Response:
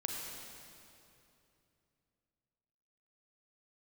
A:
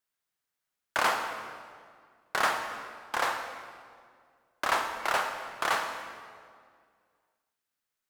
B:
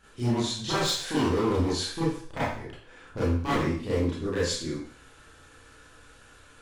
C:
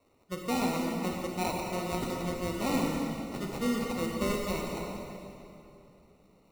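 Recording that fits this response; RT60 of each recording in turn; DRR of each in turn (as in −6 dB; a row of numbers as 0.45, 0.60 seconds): C; 2.0, 0.55, 2.8 seconds; 4.5, −10.0, −0.5 decibels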